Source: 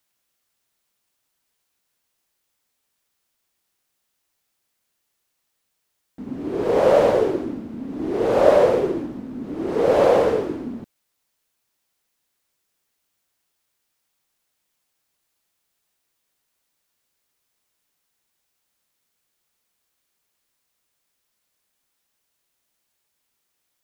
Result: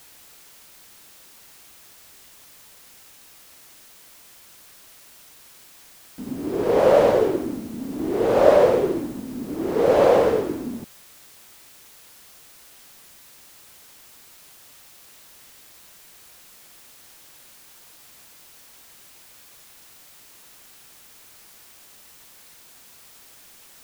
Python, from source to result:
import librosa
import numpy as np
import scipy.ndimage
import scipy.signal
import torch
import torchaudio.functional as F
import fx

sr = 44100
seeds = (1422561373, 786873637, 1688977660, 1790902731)

y = fx.dmg_noise_colour(x, sr, seeds[0], colour='white', level_db=-49.0)